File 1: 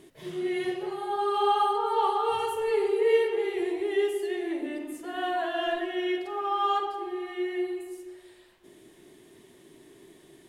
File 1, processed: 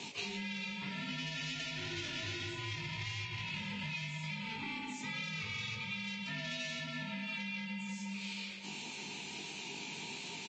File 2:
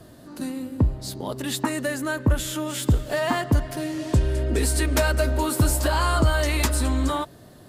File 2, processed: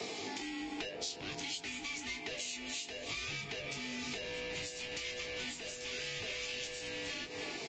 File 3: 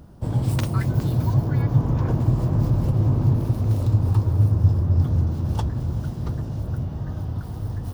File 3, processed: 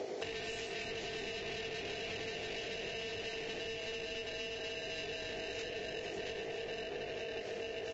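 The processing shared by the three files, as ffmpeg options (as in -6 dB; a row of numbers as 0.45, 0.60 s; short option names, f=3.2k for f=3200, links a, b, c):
-filter_complex "[0:a]asoftclip=type=hard:threshold=-18dB,highshelf=f=2.4k:g=-6,aeval=exprs='val(0)*sin(2*PI*560*n/s)':c=same,highpass=f=87:w=0.5412,highpass=f=87:w=1.3066,asoftclip=type=tanh:threshold=-33dB,asplit=2[a][b];[b]adelay=20,volume=-5dB[c];[a][c]amix=inputs=2:normalize=0,asplit=2[d][e];[e]adelay=320,lowpass=f=1.7k:p=1,volume=-13dB,asplit=2[f][g];[g]adelay=320,lowpass=f=1.7k:p=1,volume=0.25,asplit=2[h][i];[i]adelay=320,lowpass=f=1.7k:p=1,volume=0.25[j];[d][f][h][j]amix=inputs=4:normalize=0,acrossover=split=170[k][l];[l]acompressor=threshold=-42dB:ratio=6[m];[k][m]amix=inputs=2:normalize=0,equalizer=f=400:t=o:w=0.67:g=8,equalizer=f=1k:t=o:w=0.67:g=-4,equalizer=f=2.5k:t=o:w=0.67:g=6,aexciter=amount=6.8:drive=4.4:freq=2k,acompressor=threshold=-43dB:ratio=12,volume=5.5dB" -ar 16000 -c:a libvorbis -b:a 32k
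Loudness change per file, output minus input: -11.5, -15.5, -18.0 LU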